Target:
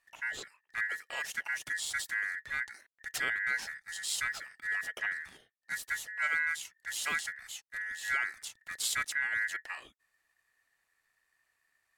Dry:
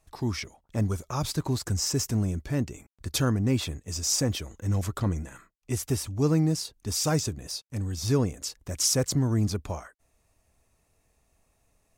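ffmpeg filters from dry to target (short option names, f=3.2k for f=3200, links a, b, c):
-af "aeval=exprs='val(0)*sin(2*PI*1800*n/s)':c=same,volume=-5.5dB"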